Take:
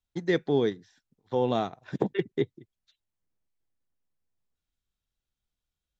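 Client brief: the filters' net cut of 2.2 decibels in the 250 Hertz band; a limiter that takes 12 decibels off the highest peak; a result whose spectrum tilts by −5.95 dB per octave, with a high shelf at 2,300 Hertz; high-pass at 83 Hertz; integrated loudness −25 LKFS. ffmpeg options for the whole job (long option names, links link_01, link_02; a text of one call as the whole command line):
ffmpeg -i in.wav -af "highpass=83,equalizer=frequency=250:width_type=o:gain=-3,highshelf=frequency=2300:gain=-5.5,volume=12.5dB,alimiter=limit=-12.5dB:level=0:latency=1" out.wav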